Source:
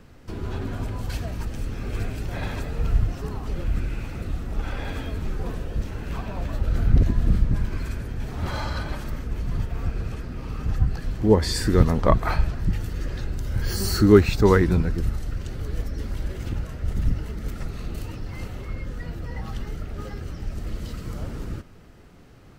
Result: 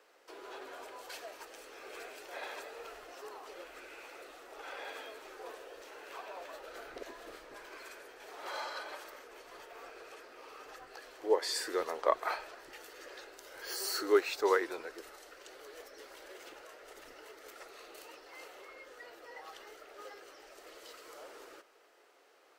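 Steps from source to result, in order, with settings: inverse Chebyshev high-pass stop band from 210 Hz, stop band 40 dB; gain -7 dB

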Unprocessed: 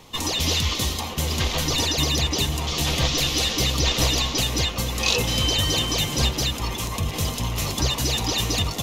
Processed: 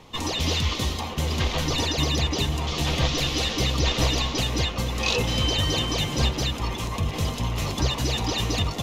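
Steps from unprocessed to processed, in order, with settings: LPF 3200 Hz 6 dB/oct

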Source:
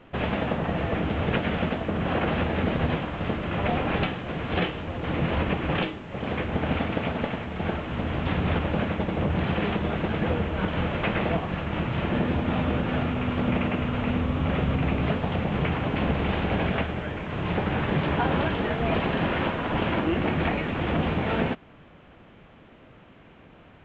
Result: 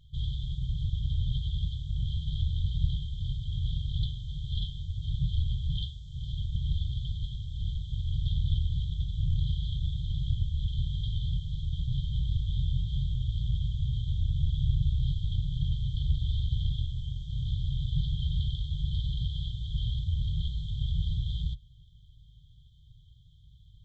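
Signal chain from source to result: octaver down 2 oct, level -3 dB; brick-wall FIR band-stop 150–3100 Hz

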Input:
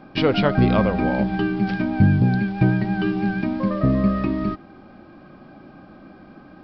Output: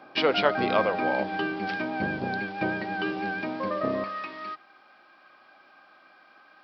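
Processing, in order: octaver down 1 oct, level -3 dB; HPF 500 Hz 12 dB/oct, from 4.04 s 1200 Hz

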